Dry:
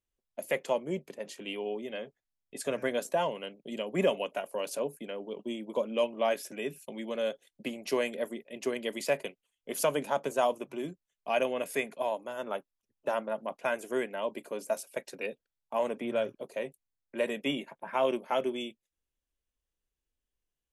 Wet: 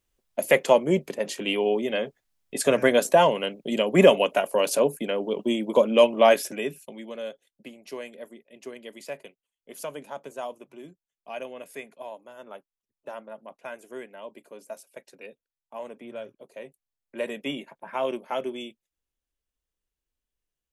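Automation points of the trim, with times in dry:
6.35 s +11.5 dB
6.98 s -1 dB
7.74 s -7.5 dB
16.37 s -7.5 dB
17.22 s 0 dB

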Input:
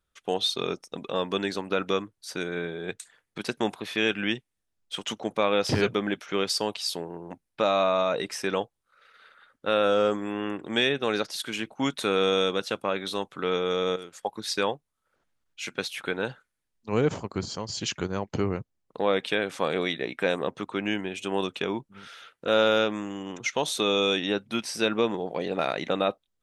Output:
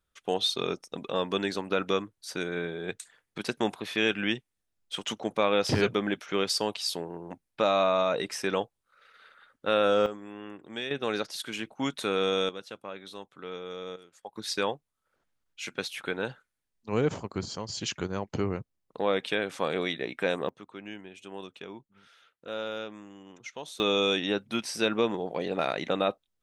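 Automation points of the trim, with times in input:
-1 dB
from 10.06 s -11.5 dB
from 10.91 s -3.5 dB
from 12.49 s -12.5 dB
from 14.36 s -2.5 dB
from 20.49 s -13.5 dB
from 23.80 s -1.5 dB

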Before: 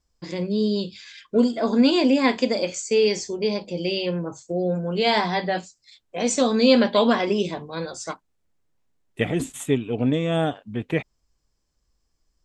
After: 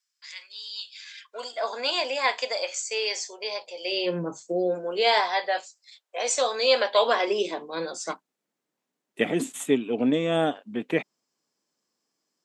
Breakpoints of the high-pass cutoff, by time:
high-pass 24 dB/octave
0.83 s 1.5 kHz
1.57 s 620 Hz
3.81 s 620 Hz
4.23 s 160 Hz
5.30 s 530 Hz
6.94 s 530 Hz
7.96 s 200 Hz

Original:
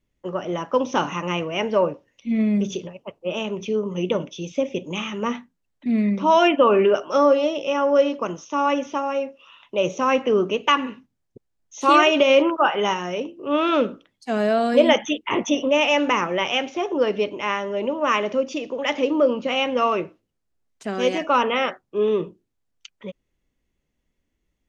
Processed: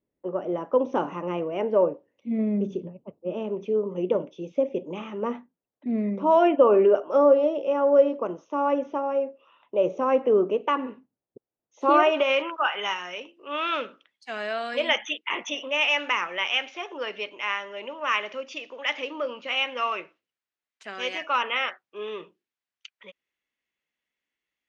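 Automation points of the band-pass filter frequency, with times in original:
band-pass filter, Q 0.96
2.53 s 450 Hz
3.00 s 180 Hz
3.62 s 500 Hz
11.88 s 500 Hz
12.46 s 2.3 kHz

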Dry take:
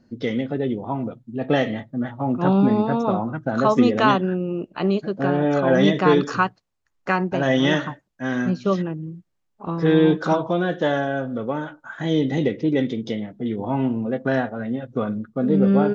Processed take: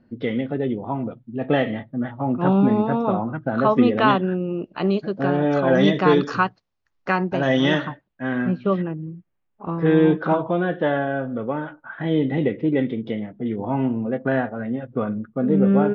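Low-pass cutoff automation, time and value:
low-pass 24 dB/octave
3.83 s 3.4 kHz
4.78 s 5.6 kHz
7.63 s 5.6 kHz
8.33 s 2.9 kHz

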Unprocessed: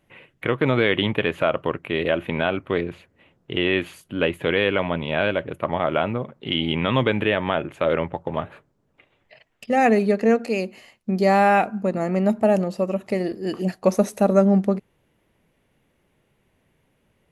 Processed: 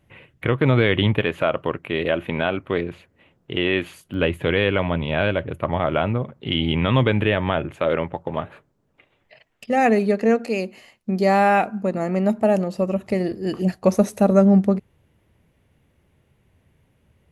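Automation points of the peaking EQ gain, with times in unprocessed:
peaking EQ 80 Hz 1.6 oct
+12 dB
from 1.21 s +1.5 dB
from 4.14 s +10 dB
from 7.76 s +0.5 dB
from 12.75 s +12 dB

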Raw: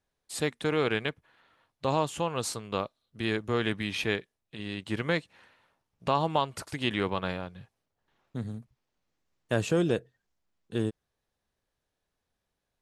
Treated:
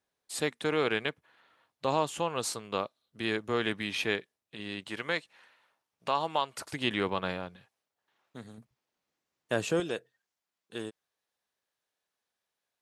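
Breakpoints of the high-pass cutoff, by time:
high-pass 6 dB/octave
250 Hz
from 4.88 s 720 Hz
from 6.61 s 170 Hz
from 7.56 s 710 Hz
from 8.58 s 300 Hz
from 9.80 s 860 Hz

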